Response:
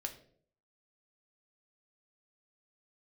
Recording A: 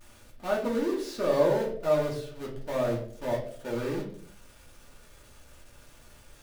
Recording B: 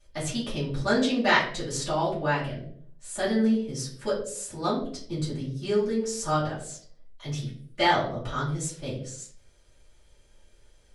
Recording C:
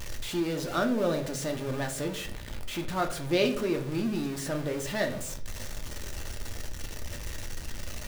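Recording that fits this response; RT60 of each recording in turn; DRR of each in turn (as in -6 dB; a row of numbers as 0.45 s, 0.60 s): C; 0.60 s, 0.60 s, 0.60 s; -4.0 dB, -12.5 dB, 3.5 dB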